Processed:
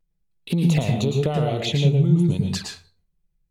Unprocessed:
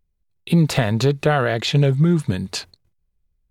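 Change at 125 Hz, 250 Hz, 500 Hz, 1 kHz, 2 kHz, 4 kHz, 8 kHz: -1.0 dB, -1.5 dB, -4.0 dB, -6.5 dB, -9.5 dB, -3.0 dB, -2.5 dB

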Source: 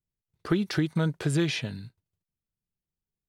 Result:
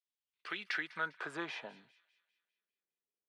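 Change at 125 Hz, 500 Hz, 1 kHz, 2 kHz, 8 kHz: -32.5 dB, -15.5 dB, -2.5 dB, -1.5 dB, -19.5 dB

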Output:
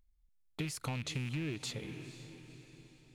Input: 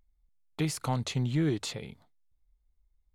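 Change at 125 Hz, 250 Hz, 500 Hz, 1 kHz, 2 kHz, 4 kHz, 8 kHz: -8.0 dB, -9.0 dB, -9.5 dB, -10.0 dB, -1.5 dB, -4.0 dB, -5.0 dB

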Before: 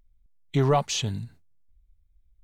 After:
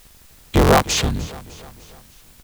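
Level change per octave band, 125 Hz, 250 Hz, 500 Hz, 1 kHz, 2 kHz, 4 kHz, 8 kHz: +5.0 dB, +9.0 dB, +7.5 dB, +9.0 dB, +14.0 dB, +8.0 dB, +8.5 dB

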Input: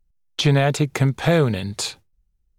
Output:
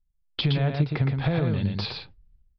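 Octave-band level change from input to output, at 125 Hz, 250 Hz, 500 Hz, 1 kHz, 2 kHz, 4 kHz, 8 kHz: -3.5 dB, -5.0 dB, -10.5 dB, -9.0 dB, -8.5 dB, -5.0 dB, under -30 dB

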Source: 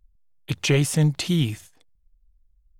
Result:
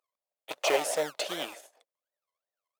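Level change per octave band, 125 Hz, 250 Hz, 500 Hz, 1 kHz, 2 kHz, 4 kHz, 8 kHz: -36.5 dB, -20.0 dB, -1.0 dB, +7.5 dB, -4.0 dB, -5.5 dB, -5.5 dB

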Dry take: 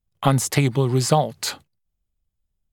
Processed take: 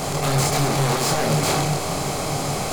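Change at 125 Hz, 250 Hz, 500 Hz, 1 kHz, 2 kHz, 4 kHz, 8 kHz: -0.5 dB, 0.0 dB, +1.5 dB, +3.0 dB, +5.5 dB, +4.5 dB, +4.5 dB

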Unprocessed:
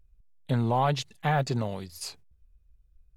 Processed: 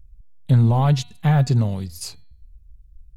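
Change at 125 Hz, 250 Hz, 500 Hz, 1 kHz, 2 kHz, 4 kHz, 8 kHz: +12.5 dB, +9.0 dB, +1.0 dB, 0.0 dB, 0.0 dB, +3.0 dB, +5.5 dB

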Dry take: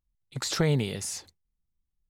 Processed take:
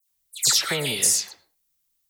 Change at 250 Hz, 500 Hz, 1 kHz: -6.0 dB, -1.5 dB, +4.0 dB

